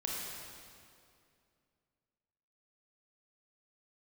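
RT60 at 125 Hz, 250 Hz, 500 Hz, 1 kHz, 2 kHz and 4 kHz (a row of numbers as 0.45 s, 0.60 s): 2.8 s, 2.8 s, 2.6 s, 2.3 s, 2.1 s, 1.9 s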